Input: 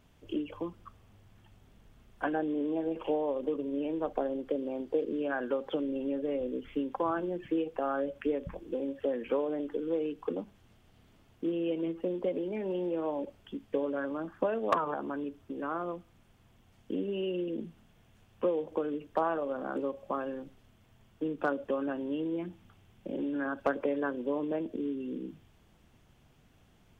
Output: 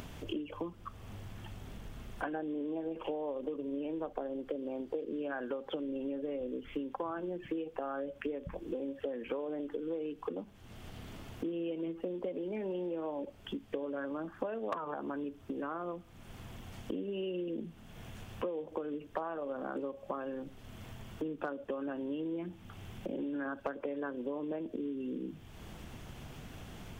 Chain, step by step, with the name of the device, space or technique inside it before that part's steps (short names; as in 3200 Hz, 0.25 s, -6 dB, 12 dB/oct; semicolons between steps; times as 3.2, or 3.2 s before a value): upward and downward compression (upward compressor, threshold -42 dBFS; compressor 4:1, threshold -42 dBFS, peak gain reduction 17 dB); gain +5.5 dB